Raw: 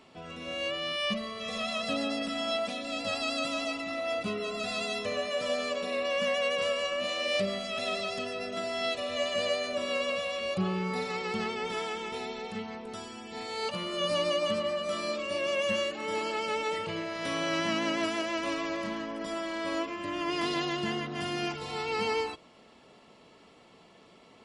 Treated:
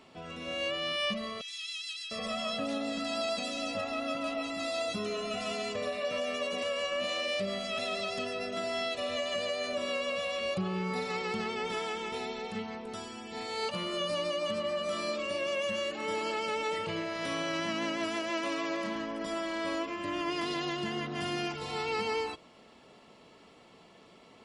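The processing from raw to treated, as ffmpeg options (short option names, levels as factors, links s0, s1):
-filter_complex "[0:a]asettb=1/sr,asplit=3[s0][s1][s2];[s0]atrim=end=1.414[s3];[s1]atrim=start=1.41:end=6.63,asetpts=PTS-STARTPTS,afade=t=in:d=0.004:c=qsin,afade=t=out:st=5.216:d=0.004:c=qsin,acrossover=split=2500[s4][s5];[s4]adelay=700[s6];[s6][s5]amix=inputs=2:normalize=0,atrim=end_sample=230202[s7];[s2]atrim=start=6.626[s8];[s3][s7]acrossfade=d=0.004:c1=hsin:c2=qsin[s9];[s9][s8]acrossfade=d=0.004:c1=qsin:c2=hsin,asettb=1/sr,asplit=3[s10][s11][s12];[s10]atrim=end=18.304[s13];[s11]atrim=start=18.3:end=18.96,asetpts=PTS-STARTPTS,afade=t=in:d=0.004:c=qsin,afade=t=out:st=0.656:d=0.004:c=qsin,highpass=160[s14];[s12]atrim=start=18.956[s15];[s13][s14]acrossfade=d=0.004:c1=hsin:c2=qsin[s16];[s16][s15]acrossfade=d=0.004:c1=qsin:c2=hsin,alimiter=level_in=1.06:limit=0.0631:level=0:latency=1:release=119,volume=0.944"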